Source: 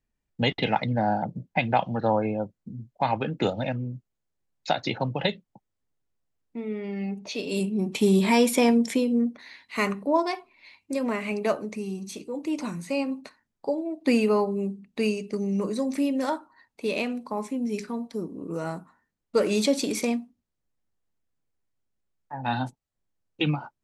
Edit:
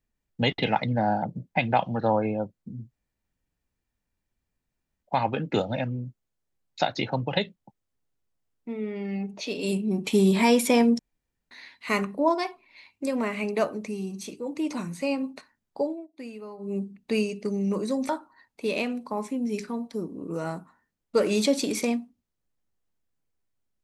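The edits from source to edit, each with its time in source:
0:02.91: splice in room tone 2.12 s
0:08.87–0:09.39: fill with room tone
0:13.74–0:14.66: duck −18.5 dB, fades 0.21 s
0:15.97–0:16.29: remove

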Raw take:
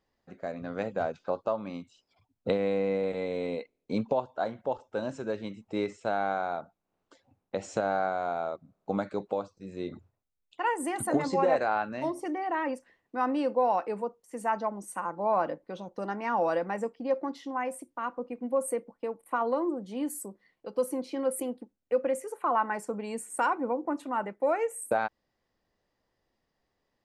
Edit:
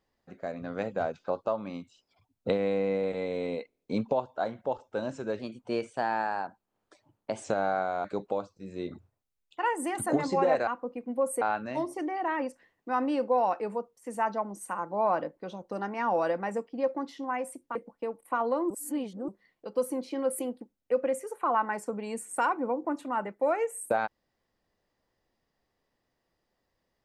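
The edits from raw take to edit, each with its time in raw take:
0:05.39–0:07.71: play speed 113%
0:08.31–0:09.05: remove
0:18.02–0:18.76: move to 0:11.68
0:19.71–0:20.29: reverse

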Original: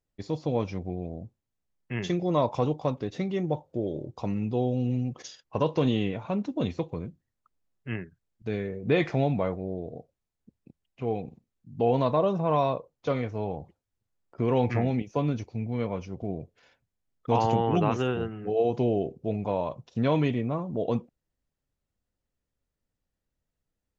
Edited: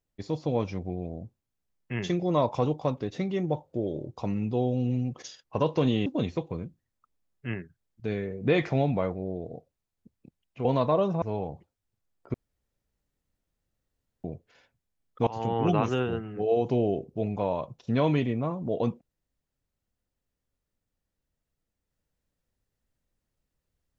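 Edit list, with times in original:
0:06.06–0:06.48: remove
0:11.07–0:11.90: remove
0:12.47–0:13.30: remove
0:14.42–0:16.32: fill with room tone
0:17.35–0:17.72: fade in, from −23.5 dB

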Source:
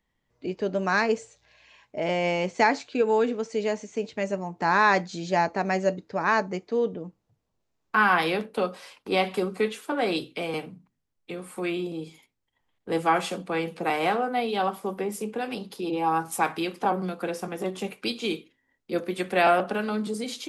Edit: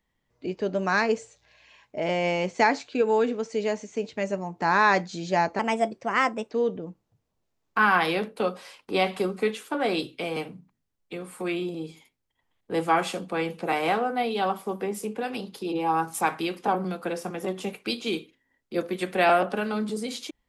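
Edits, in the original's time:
0:05.59–0:06.69: play speed 119%

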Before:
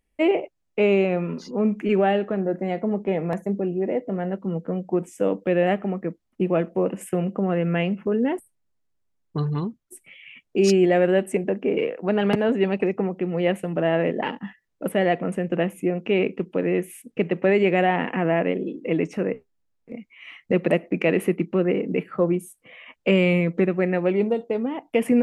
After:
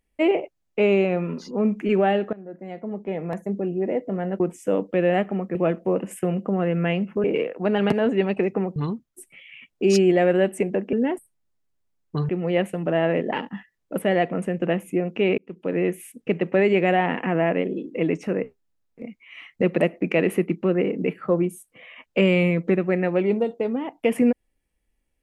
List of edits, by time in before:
0:02.33–0:03.82: fade in, from −19 dB
0:04.40–0:04.93: remove
0:06.08–0:06.45: remove
0:08.14–0:09.50: swap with 0:11.67–0:13.19
0:16.28–0:16.68: fade in linear

